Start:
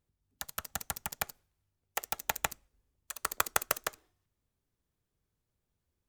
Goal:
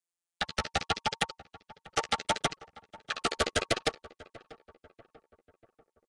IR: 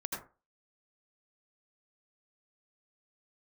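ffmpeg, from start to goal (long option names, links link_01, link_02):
-filter_complex "[0:a]asplit=3[link_01][link_02][link_03];[link_01]afade=type=out:start_time=0.75:duration=0.02[link_04];[link_02]lowshelf=frequency=220:gain=-7.5,afade=type=in:start_time=0.75:duration=0.02,afade=type=out:start_time=3.36:duration=0.02[link_05];[link_03]afade=type=in:start_time=3.36:duration=0.02[link_06];[link_04][link_05][link_06]amix=inputs=3:normalize=0,aeval=exprs='sgn(val(0))*max(abs(val(0))-0.00335,0)':channel_layout=same,anlmdn=0.000158,lowpass=frequency=4200:width=0.5412,lowpass=frequency=4200:width=1.3066,equalizer=frequency=450:width_type=o:width=0.57:gain=6,aeval=exprs='0.251*sin(PI/2*7.94*val(0)/0.251)':channel_layout=same,asuperstop=centerf=1000:order=20:qfactor=5.6,flanger=delay=5.4:depth=7.8:regen=-6:speed=0.74:shape=sinusoidal,asplit=2[link_07][link_08];[link_08]adelay=640,lowpass=frequency=1700:poles=1,volume=-19dB,asplit=2[link_09][link_10];[link_10]adelay=640,lowpass=frequency=1700:poles=1,volume=0.52,asplit=2[link_11][link_12];[link_12]adelay=640,lowpass=frequency=1700:poles=1,volume=0.52,asplit=2[link_13][link_14];[link_14]adelay=640,lowpass=frequency=1700:poles=1,volume=0.52[link_15];[link_07][link_09][link_11][link_13][link_15]amix=inputs=5:normalize=0,volume=-1.5dB" -ar 22050 -c:a nellymoser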